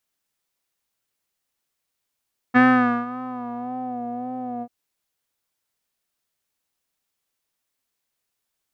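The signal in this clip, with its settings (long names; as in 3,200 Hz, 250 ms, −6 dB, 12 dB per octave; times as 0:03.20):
subtractive patch with vibrato B3, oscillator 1 square, interval +12 semitones, oscillator 2 level −7.5 dB, sub −19 dB, filter lowpass, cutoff 620 Hz, Q 3.5, filter envelope 1.5 octaves, filter decay 1.46 s, filter sustain 10%, attack 25 ms, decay 0.49 s, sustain −18.5 dB, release 0.06 s, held 2.08 s, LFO 1.8 Hz, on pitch 53 cents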